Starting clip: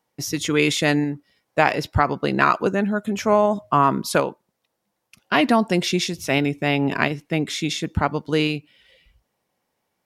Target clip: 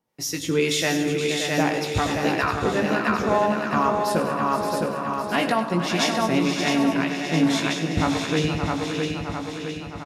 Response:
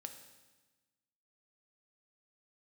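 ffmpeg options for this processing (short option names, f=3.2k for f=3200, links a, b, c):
-filter_complex "[0:a]acrossover=split=490[a][b];[a]aeval=exprs='val(0)*(1-0.7/2+0.7/2*cos(2*PI*1.9*n/s))':c=same[c];[b]aeval=exprs='val(0)*(1-0.7/2-0.7/2*cos(2*PI*1.9*n/s))':c=same[d];[c][d]amix=inputs=2:normalize=0,aecho=1:1:661|1322|1983|2644|3305|3966|4627:0.562|0.304|0.164|0.0885|0.0478|0.0258|0.0139,asplit=2[e][f];[1:a]atrim=start_sample=2205,adelay=18[g];[f][g]afir=irnorm=-1:irlink=0,volume=-1dB[h];[e][h]amix=inputs=2:normalize=0,alimiter=limit=-10.5dB:level=0:latency=1:release=388,asplit=2[i][j];[j]aecho=0:1:98|192|471|572:0.224|0.168|0.299|0.422[k];[i][k]amix=inputs=2:normalize=0"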